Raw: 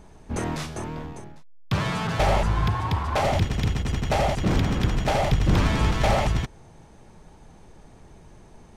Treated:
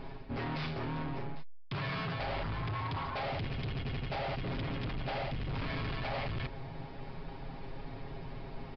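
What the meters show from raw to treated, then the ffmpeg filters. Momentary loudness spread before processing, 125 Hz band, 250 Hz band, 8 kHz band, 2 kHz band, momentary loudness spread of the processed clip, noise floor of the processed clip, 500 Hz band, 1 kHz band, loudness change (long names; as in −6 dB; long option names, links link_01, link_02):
12 LU, −12.5 dB, −12.0 dB, below −30 dB, −9.0 dB, 10 LU, −45 dBFS, −12.5 dB, −12.0 dB, −14.0 dB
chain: -af "equalizer=frequency=2300:width_type=o:width=0.59:gain=3.5,aecho=1:1:7.4:0.79,areverse,acompressor=threshold=-35dB:ratio=4,areverse,asoftclip=type=hard:threshold=-37dB,aresample=11025,aresample=44100,volume=3.5dB"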